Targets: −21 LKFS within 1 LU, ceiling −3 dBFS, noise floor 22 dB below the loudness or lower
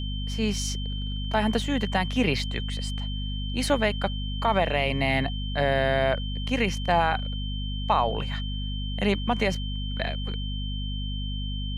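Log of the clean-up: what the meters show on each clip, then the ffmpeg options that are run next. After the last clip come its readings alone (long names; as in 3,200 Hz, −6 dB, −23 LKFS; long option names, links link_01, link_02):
mains hum 50 Hz; hum harmonics up to 250 Hz; level of the hum −28 dBFS; interfering tone 3,100 Hz; level of the tone −37 dBFS; integrated loudness −27.0 LKFS; sample peak −9.5 dBFS; target loudness −21.0 LKFS
→ -af "bandreject=frequency=50:width_type=h:width=6,bandreject=frequency=100:width_type=h:width=6,bandreject=frequency=150:width_type=h:width=6,bandreject=frequency=200:width_type=h:width=6,bandreject=frequency=250:width_type=h:width=6"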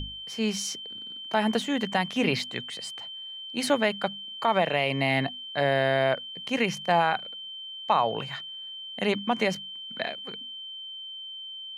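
mains hum none found; interfering tone 3,100 Hz; level of the tone −37 dBFS
→ -af "bandreject=frequency=3100:width=30"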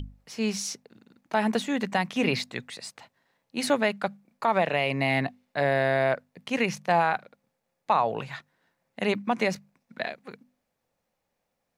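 interfering tone none found; integrated loudness −27.5 LKFS; sample peak −11.0 dBFS; target loudness −21.0 LKFS
→ -af "volume=6.5dB"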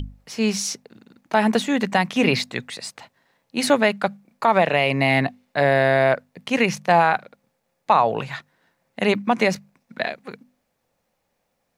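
integrated loudness −21.0 LKFS; sample peak −4.5 dBFS; background noise floor −74 dBFS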